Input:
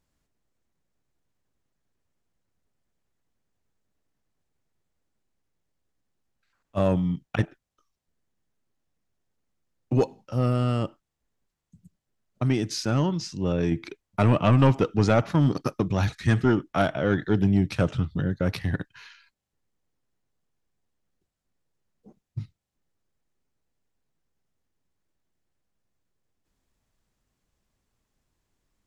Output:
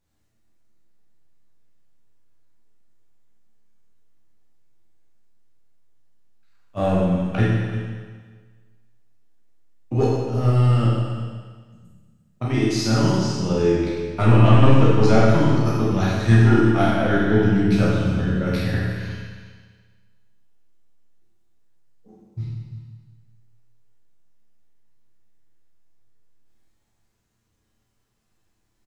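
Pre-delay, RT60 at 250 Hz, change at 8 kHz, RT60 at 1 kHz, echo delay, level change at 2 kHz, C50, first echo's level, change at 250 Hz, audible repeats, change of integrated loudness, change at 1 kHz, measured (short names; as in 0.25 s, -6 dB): 9 ms, 1.6 s, +5.0 dB, 1.6 s, 0.349 s, +6.0 dB, -2.0 dB, -12.5 dB, +5.5 dB, 1, +5.5 dB, +5.0 dB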